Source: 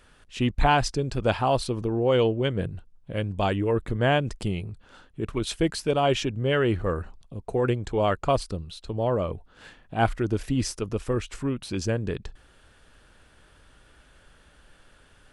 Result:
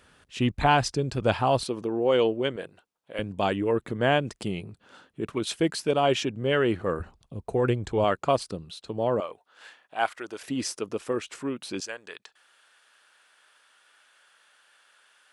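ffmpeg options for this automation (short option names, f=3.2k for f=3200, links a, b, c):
-af "asetnsamples=n=441:p=0,asendcmd='1.63 highpass f 240;2.56 highpass f 510;3.19 highpass f 160;7 highpass f 61;8.04 highpass f 160;9.2 highpass f 680;10.42 highpass f 270;11.8 highpass f 1000',highpass=75"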